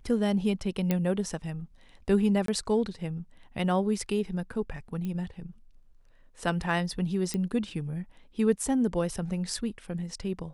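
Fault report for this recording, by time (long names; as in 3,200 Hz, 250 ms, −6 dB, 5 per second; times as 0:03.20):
0:00.91: click −13 dBFS
0:02.46–0:02.48: drop-out 23 ms
0:05.05: click −24 dBFS
0:07.34: click −18 dBFS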